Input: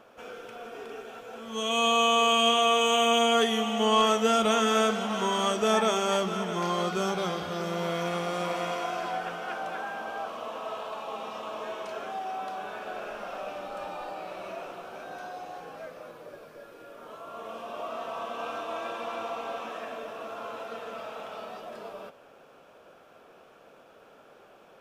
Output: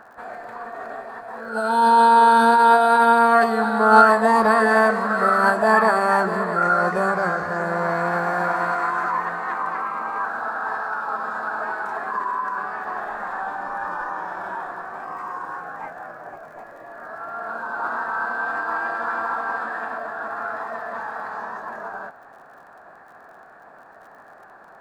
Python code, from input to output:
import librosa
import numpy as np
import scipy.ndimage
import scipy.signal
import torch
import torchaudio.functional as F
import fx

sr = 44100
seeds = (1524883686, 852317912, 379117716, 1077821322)

y = fx.high_shelf_res(x, sr, hz=1600.0, db=-11.5, q=3.0)
y = fx.formant_shift(y, sr, semitones=5)
y = fx.dmg_crackle(y, sr, seeds[0], per_s=46.0, level_db=-51.0)
y = y * librosa.db_to_amplitude(6.0)